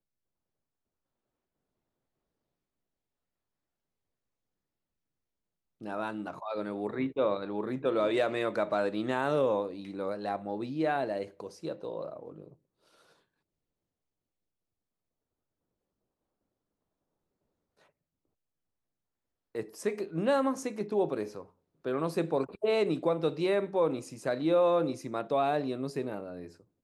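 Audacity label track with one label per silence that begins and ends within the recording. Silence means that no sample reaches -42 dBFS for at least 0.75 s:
12.480000	19.550000	silence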